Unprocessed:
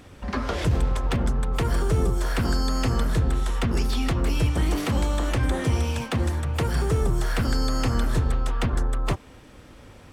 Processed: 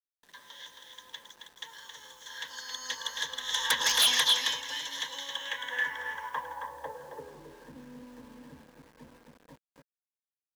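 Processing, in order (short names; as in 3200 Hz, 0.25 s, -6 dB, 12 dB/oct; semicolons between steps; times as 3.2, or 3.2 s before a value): Doppler pass-by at 3.75, 6 m/s, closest 1.4 m; ripple EQ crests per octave 1.1, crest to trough 17 dB; speed mistake 25 fps video run at 24 fps; band-pass sweep 4200 Hz -> 240 Hz, 5.1–7.72; on a send: echo 0.27 s -5.5 dB; on the sum: sine folder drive 13 dB, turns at -21.5 dBFS; resonant low shelf 540 Hz -14 dB, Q 1.5; bit-crush 9-bit; small resonant body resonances 200/320/460/1600 Hz, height 7 dB, ringing for 20 ms; upward expander 1.5:1, over -39 dBFS; gain +3 dB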